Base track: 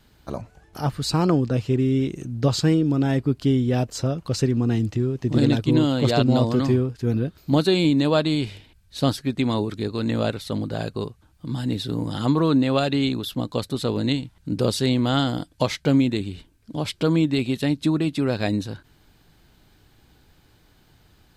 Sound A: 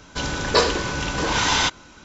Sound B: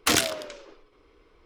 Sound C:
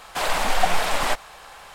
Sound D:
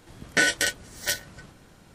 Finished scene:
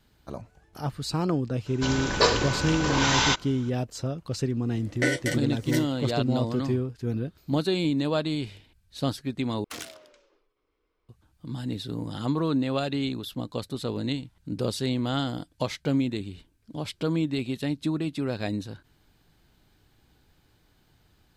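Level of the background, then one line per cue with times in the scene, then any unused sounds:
base track −6.5 dB
0:01.66: mix in A −3 dB
0:04.65: mix in D −10 dB + hollow resonant body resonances 300/510/2,000 Hz, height 16 dB, ringing for 40 ms
0:09.64: overwrite with B −17 dB + mains-hum notches 50/100/150/200/250/300/350/400/450/500 Hz
not used: C

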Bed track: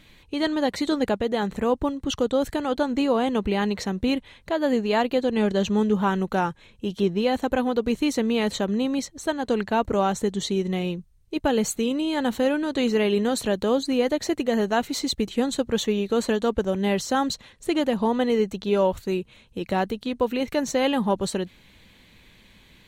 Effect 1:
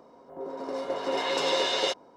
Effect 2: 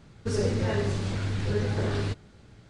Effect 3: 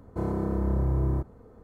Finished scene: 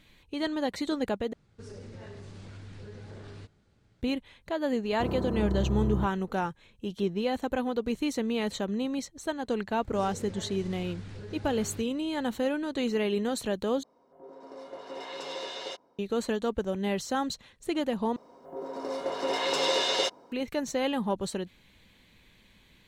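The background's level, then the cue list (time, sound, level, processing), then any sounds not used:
bed track −6.5 dB
0:01.33: overwrite with 2 −13.5 dB + downward compressor 3 to 1, threshold −28 dBFS
0:04.84: mix in 3 −3.5 dB
0:09.69: mix in 2 −7.5 dB + downward compressor, threshold −31 dBFS
0:13.83: overwrite with 1 −11.5 dB
0:18.16: overwrite with 1 −1 dB + high-shelf EQ 6,000 Hz +6 dB

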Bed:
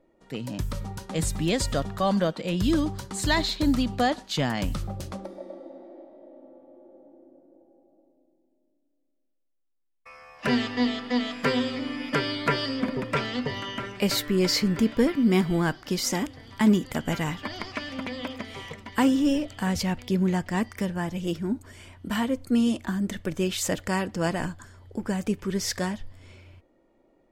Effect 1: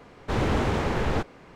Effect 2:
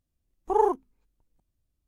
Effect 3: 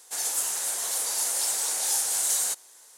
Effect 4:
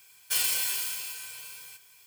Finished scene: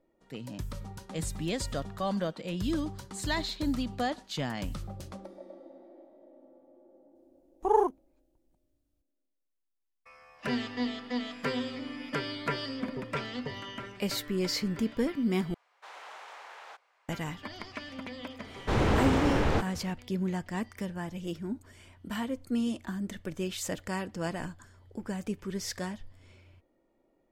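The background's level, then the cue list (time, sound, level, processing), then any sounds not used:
bed −7.5 dB
0:07.15: mix in 2 −2 dB
0:15.54: overwrite with 1 −15 dB + high-pass filter 720 Hz 24 dB per octave
0:18.39: mix in 1 −1 dB
not used: 3, 4

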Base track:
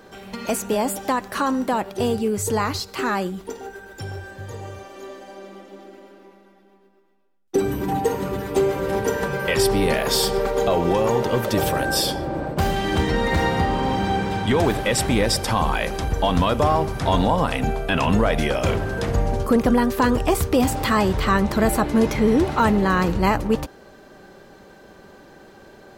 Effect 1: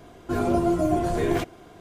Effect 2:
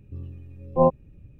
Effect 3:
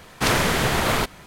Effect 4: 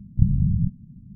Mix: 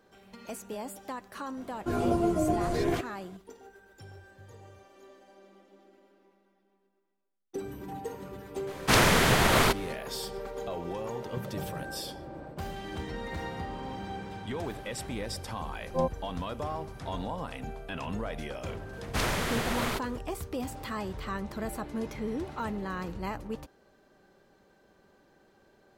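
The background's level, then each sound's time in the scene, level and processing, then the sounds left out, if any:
base track −16.5 dB
0:01.57: mix in 1 −4.5 dB
0:08.67: mix in 3 −1.5 dB
0:11.15: mix in 4 −13.5 dB + high-pass filter 200 Hz
0:15.18: mix in 2 −10 dB
0:18.93: mix in 3 −10 dB

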